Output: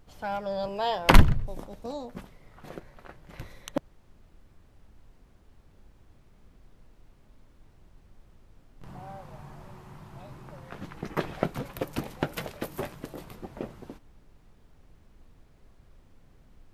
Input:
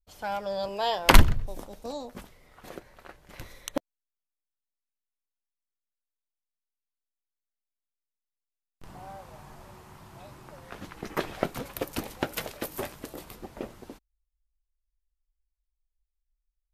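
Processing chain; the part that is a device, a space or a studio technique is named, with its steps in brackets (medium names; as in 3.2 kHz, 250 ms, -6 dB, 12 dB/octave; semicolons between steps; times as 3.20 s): car interior (peaking EQ 150 Hz +7 dB 0.77 oct; treble shelf 4 kHz -8 dB; brown noise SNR 23 dB)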